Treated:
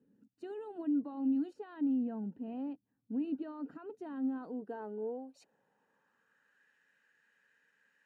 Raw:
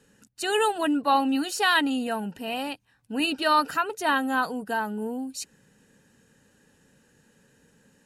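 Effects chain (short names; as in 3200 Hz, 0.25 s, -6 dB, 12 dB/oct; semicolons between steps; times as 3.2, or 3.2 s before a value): 1.53–3.76 high shelf 3300 Hz -8.5 dB; limiter -22 dBFS, peak gain reduction 11 dB; band-pass sweep 260 Hz -> 1800 Hz, 4.24–6.69; gain -2.5 dB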